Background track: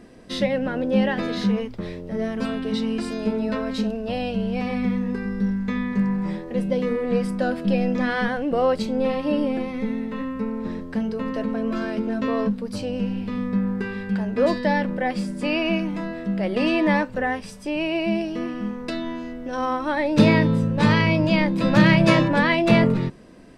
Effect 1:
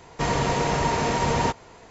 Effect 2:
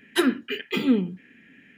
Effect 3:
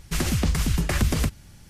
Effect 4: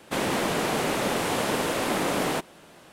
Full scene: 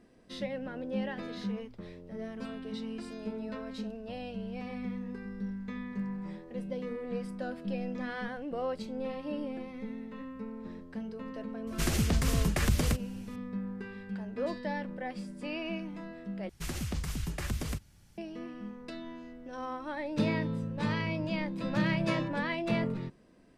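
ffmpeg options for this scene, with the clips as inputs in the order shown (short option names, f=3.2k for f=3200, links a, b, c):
-filter_complex "[3:a]asplit=2[a][b];[0:a]volume=-14dB,asplit=2[c][d];[c]atrim=end=16.494[e];[b]atrim=end=1.69,asetpts=PTS-STARTPTS,volume=-12dB[f];[d]atrim=start=18.176[g];[a]atrim=end=1.69,asetpts=PTS-STARTPTS,volume=-5dB,afade=t=in:d=0.004:c=hsin,afade=t=out:st=1.686:d=0.004:c=hsin,adelay=11670[h];[e][f]acrossfade=d=0.004:c1=hsin:c2=hsin[i];[i][g]acrossfade=d=0.004:c1=hsin:c2=hsin[j];[j][h]amix=inputs=2:normalize=0"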